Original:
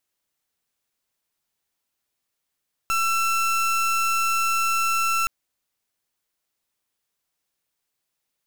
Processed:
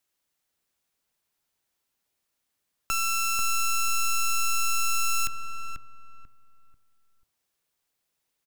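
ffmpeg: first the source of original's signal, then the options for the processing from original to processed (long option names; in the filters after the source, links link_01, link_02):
-f lavfi -i "aevalsrc='0.0794*(2*lt(mod(1340*t,1),0.3)-1)':duration=2.37:sample_rate=44100"
-filter_complex "[0:a]bandreject=frequency=108:width_type=h:width=4,bandreject=frequency=216:width_type=h:width=4,bandreject=frequency=324:width_type=h:width=4,bandreject=frequency=432:width_type=h:width=4,bandreject=frequency=540:width_type=h:width=4,bandreject=frequency=648:width_type=h:width=4,bandreject=frequency=756:width_type=h:width=4,bandreject=frequency=864:width_type=h:width=4,bandreject=frequency=972:width_type=h:width=4,bandreject=frequency=1080:width_type=h:width=4,bandreject=frequency=1188:width_type=h:width=4,bandreject=frequency=1296:width_type=h:width=4,acrossover=split=300|3000[link_01][link_02][link_03];[link_02]acompressor=threshold=-32dB:ratio=6[link_04];[link_01][link_04][link_03]amix=inputs=3:normalize=0,asplit=2[link_05][link_06];[link_06]adelay=490,lowpass=frequency=1100:poles=1,volume=-3.5dB,asplit=2[link_07][link_08];[link_08]adelay=490,lowpass=frequency=1100:poles=1,volume=0.34,asplit=2[link_09][link_10];[link_10]adelay=490,lowpass=frequency=1100:poles=1,volume=0.34,asplit=2[link_11][link_12];[link_12]adelay=490,lowpass=frequency=1100:poles=1,volume=0.34[link_13];[link_05][link_07][link_09][link_11][link_13]amix=inputs=5:normalize=0"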